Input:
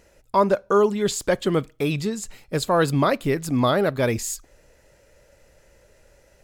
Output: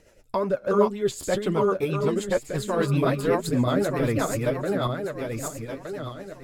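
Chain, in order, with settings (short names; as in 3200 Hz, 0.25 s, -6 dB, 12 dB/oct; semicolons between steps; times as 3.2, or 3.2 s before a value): regenerating reverse delay 0.609 s, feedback 52%, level -1 dB; flange 2 Hz, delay 6.2 ms, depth 4.9 ms, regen +33%; dynamic EQ 5000 Hz, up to -5 dB, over -45 dBFS, Q 0.7; rotary speaker horn 8 Hz; in parallel at -1 dB: compressor, threshold -38 dBFS, peak gain reduction 21 dB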